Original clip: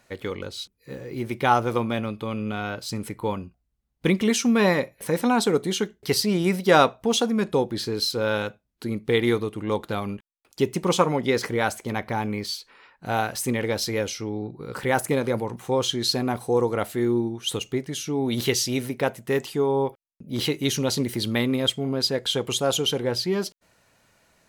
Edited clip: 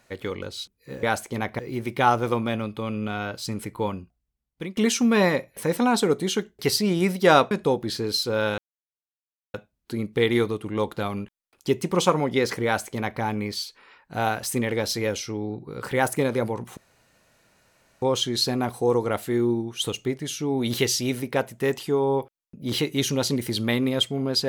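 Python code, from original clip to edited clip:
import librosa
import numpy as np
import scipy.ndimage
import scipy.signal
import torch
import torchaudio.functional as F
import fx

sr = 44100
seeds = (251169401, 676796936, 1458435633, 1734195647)

y = fx.edit(x, sr, fx.fade_out_to(start_s=3.39, length_s=0.82, floor_db=-19.0),
    fx.cut(start_s=6.95, length_s=0.44),
    fx.insert_silence(at_s=8.46, length_s=0.96),
    fx.duplicate(start_s=11.57, length_s=0.56, to_s=1.03),
    fx.insert_room_tone(at_s=15.69, length_s=1.25), tone=tone)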